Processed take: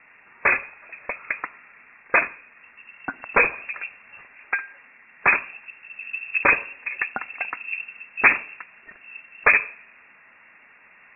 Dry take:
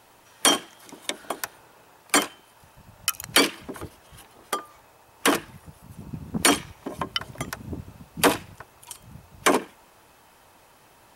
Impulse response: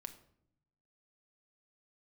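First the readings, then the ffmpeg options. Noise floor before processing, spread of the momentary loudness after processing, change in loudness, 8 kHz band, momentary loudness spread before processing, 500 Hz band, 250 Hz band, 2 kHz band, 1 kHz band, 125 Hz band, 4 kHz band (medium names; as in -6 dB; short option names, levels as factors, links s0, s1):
-56 dBFS, 21 LU, +2.5 dB, under -40 dB, 20 LU, -3.0 dB, -12.0 dB, +9.0 dB, +0.5 dB, -10.0 dB, under -25 dB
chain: -filter_complex "[0:a]asplit=2[s0][s1];[1:a]atrim=start_sample=2205[s2];[s1][s2]afir=irnorm=-1:irlink=0,volume=0.75[s3];[s0][s3]amix=inputs=2:normalize=0,lowpass=f=2400:t=q:w=0.5098,lowpass=f=2400:t=q:w=0.6013,lowpass=f=2400:t=q:w=0.9,lowpass=f=2400:t=q:w=2.563,afreqshift=-2800,volume=1.12"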